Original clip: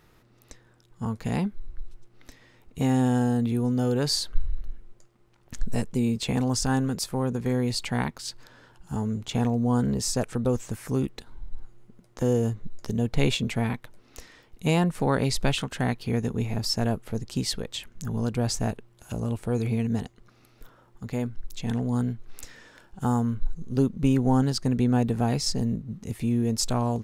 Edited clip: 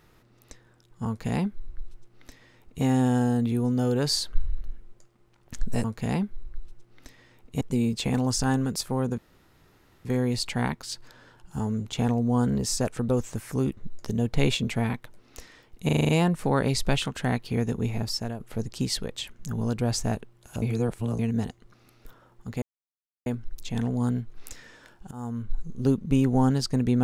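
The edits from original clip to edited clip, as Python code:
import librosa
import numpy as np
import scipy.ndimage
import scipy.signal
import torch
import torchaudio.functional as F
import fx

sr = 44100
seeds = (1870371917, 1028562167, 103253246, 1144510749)

y = fx.edit(x, sr, fx.duplicate(start_s=1.07, length_s=1.77, to_s=5.84),
    fx.insert_room_tone(at_s=7.41, length_s=0.87),
    fx.cut(start_s=11.13, length_s=1.44),
    fx.stutter(start_s=14.65, slice_s=0.04, count=7),
    fx.fade_out_to(start_s=16.53, length_s=0.43, floor_db=-12.5),
    fx.reverse_span(start_s=19.18, length_s=0.57),
    fx.insert_silence(at_s=21.18, length_s=0.64),
    fx.fade_in_from(start_s=23.03, length_s=0.53, floor_db=-22.5), tone=tone)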